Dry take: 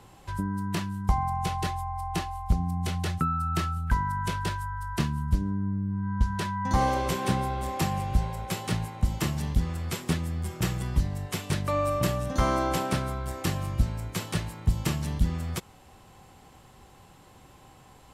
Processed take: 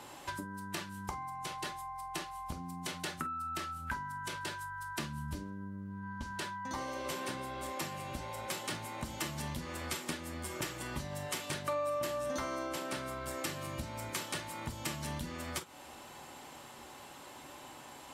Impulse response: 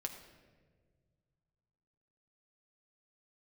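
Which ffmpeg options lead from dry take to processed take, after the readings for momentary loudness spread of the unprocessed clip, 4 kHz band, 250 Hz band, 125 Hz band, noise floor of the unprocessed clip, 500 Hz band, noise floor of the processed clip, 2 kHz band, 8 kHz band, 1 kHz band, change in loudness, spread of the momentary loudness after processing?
6 LU, -4.0 dB, -12.0 dB, -17.0 dB, -54 dBFS, -6.5 dB, -51 dBFS, -4.0 dB, -3.0 dB, -9.0 dB, -10.5 dB, 13 LU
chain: -filter_complex "[0:a]highpass=f=440:p=1,acompressor=threshold=-42dB:ratio=6[a];[1:a]atrim=start_sample=2205,atrim=end_sample=4410,asetrate=79380,aresample=44100[b];[a][b]afir=irnorm=-1:irlink=0,volume=13.5dB"

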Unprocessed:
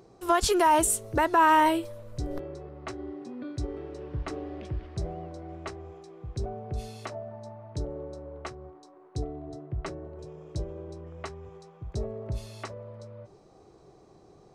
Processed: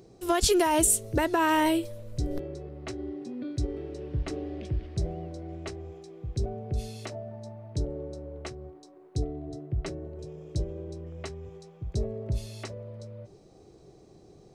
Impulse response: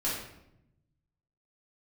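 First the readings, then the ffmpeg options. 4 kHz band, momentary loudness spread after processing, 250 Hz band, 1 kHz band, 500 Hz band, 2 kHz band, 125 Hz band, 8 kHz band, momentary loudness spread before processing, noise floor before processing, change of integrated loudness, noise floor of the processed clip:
+2.0 dB, 19 LU, +2.5 dB, -6.0 dB, 0.0 dB, -2.5 dB, +3.5 dB, +3.5 dB, 22 LU, -56 dBFS, -1.0 dB, -54 dBFS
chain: -af "equalizer=f=1.1k:t=o:w=1.4:g=-11,volume=3.5dB"

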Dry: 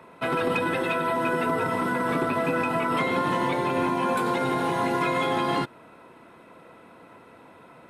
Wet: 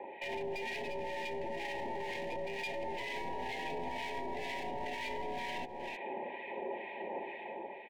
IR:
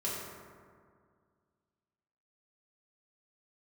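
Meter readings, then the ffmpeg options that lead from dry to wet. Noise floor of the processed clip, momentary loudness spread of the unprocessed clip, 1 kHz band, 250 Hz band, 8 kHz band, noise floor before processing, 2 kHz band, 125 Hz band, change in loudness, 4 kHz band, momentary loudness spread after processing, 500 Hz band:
-46 dBFS, 1 LU, -14.0 dB, -19.0 dB, -12.5 dB, -51 dBFS, -11.5 dB, -20.0 dB, -14.5 dB, -9.0 dB, 3 LU, -12.0 dB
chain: -filter_complex "[0:a]aecho=1:1:6.4:0.47,highpass=f=480:t=q:w=0.5412,highpass=f=480:t=q:w=1.307,lowpass=f=3k:t=q:w=0.5176,lowpass=f=3k:t=q:w=0.7071,lowpass=f=3k:t=q:w=1.932,afreqshift=-100,dynaudnorm=f=170:g=7:m=7dB,aeval=exprs='clip(val(0),-1,0.0316)':c=same,aecho=1:1:312:0.0841,acompressor=threshold=-35dB:ratio=6,acrossover=split=1200[a][b];[a]aeval=exprs='val(0)*(1-0.7/2+0.7/2*cos(2*PI*2.1*n/s))':c=same[c];[b]aeval=exprs='val(0)*(1-0.7/2-0.7/2*cos(2*PI*2.1*n/s))':c=same[d];[c][d]amix=inputs=2:normalize=0,asuperstop=centerf=1300:order=8:qfactor=1.6,alimiter=level_in=15dB:limit=-24dB:level=0:latency=1:release=16,volume=-15dB,volume=8dB"

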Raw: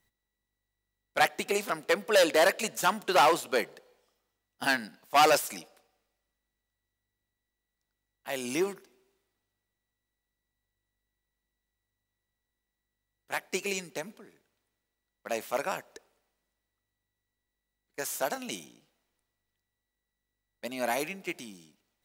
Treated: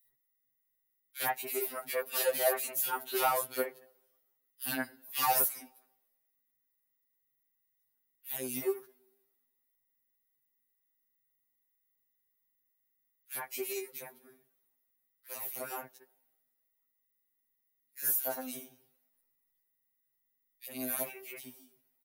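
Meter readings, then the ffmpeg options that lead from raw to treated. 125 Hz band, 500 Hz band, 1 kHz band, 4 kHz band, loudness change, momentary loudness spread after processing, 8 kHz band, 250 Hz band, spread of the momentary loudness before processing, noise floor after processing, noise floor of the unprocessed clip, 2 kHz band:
-8.5 dB, -7.5 dB, -8.0 dB, -8.5 dB, -4.5 dB, 17 LU, -0.5 dB, -7.5 dB, 17 LU, -80 dBFS, under -85 dBFS, -10.0 dB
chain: -filter_complex "[0:a]acrossover=split=2200[a][b];[a]adelay=60[c];[c][b]amix=inputs=2:normalize=0,aexciter=amount=10:drive=2.9:freq=10k,afftfilt=real='re*2.45*eq(mod(b,6),0)':imag='im*2.45*eq(mod(b,6),0)':win_size=2048:overlap=0.75,volume=-5dB"

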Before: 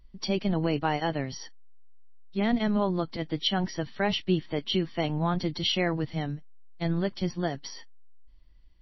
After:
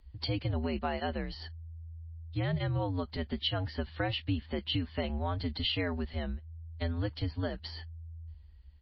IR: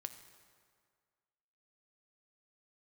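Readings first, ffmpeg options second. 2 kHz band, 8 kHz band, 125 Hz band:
-5.0 dB, n/a, -1.5 dB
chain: -af "aresample=11025,aresample=44100,acompressor=threshold=-32dB:ratio=2,afreqshift=-82"

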